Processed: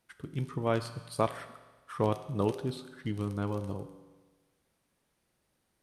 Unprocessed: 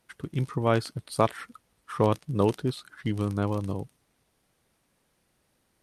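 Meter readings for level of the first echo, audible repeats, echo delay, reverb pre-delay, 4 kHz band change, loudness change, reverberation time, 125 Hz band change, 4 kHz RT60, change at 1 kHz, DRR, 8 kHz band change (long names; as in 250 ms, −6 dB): no echo audible, no echo audible, no echo audible, 8 ms, −5.5 dB, −5.5 dB, 1.3 s, −6.0 dB, 1.3 s, −5.5 dB, 9.5 dB, −5.5 dB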